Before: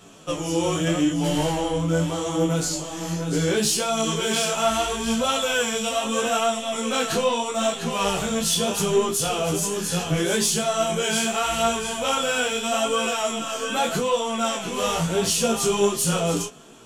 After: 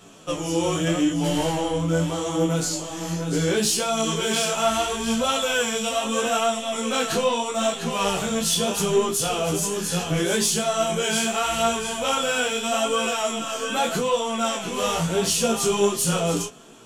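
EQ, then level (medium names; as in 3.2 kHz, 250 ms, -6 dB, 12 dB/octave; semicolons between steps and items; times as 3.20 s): hum notches 50/100/150 Hz; 0.0 dB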